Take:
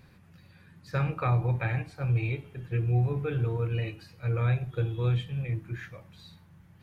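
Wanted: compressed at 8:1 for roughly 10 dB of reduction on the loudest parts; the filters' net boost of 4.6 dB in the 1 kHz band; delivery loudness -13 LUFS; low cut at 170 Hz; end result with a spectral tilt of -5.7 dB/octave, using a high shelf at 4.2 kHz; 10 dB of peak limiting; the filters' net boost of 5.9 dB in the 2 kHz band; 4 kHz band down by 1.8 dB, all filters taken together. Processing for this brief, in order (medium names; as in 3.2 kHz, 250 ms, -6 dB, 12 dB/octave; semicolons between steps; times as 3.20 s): high-pass 170 Hz; peaking EQ 1 kHz +4 dB; peaking EQ 2 kHz +8.5 dB; peaking EQ 4 kHz -5 dB; treble shelf 4.2 kHz -3.5 dB; compression 8:1, threshold -33 dBFS; trim +28 dB; peak limiter -3.5 dBFS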